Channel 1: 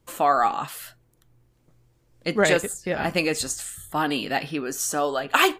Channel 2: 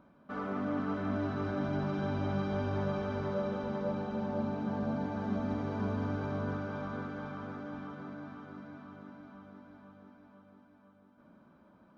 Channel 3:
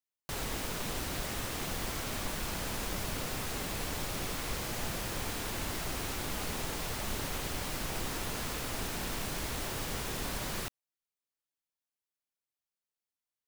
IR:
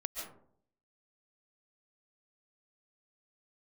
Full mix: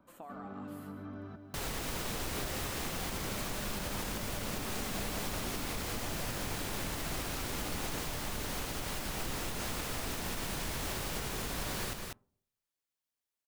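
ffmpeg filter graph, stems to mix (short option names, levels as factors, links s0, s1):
-filter_complex "[0:a]equalizer=f=6600:t=o:w=3:g=-8.5,acompressor=threshold=0.0282:ratio=6,volume=0.119,asplit=2[s0][s1];[s1]volume=0.473[s2];[1:a]acrossover=split=170|340[s3][s4][s5];[s3]acompressor=threshold=0.00562:ratio=4[s6];[s4]acompressor=threshold=0.00708:ratio=4[s7];[s5]acompressor=threshold=0.00398:ratio=4[s8];[s6][s7][s8]amix=inputs=3:normalize=0,volume=0.596,asplit=3[s9][s10][s11];[s9]atrim=end=1.36,asetpts=PTS-STARTPTS,afade=t=out:st=1.356:d=0.004:c=hsin[s12];[s10]atrim=start=1.36:end=3.09,asetpts=PTS-STARTPTS,volume=0[s13];[s11]atrim=start=3.09,asetpts=PTS-STARTPTS,afade=t=in:d=0.004:c=hsin[s14];[s12][s13][s14]concat=n=3:v=0:a=1,asplit=2[s15][s16];[s16]volume=0.447[s17];[2:a]adelay=1250,volume=0.944,asplit=3[s18][s19][s20];[s19]volume=0.126[s21];[s20]volume=0.562[s22];[3:a]atrim=start_sample=2205[s23];[s2][s21]amix=inputs=2:normalize=0[s24];[s24][s23]afir=irnorm=-1:irlink=0[s25];[s17][s22]amix=inputs=2:normalize=0,aecho=0:1:196:1[s26];[s0][s15][s18][s25][s26]amix=inputs=5:normalize=0,alimiter=level_in=1.33:limit=0.0631:level=0:latency=1:release=133,volume=0.75"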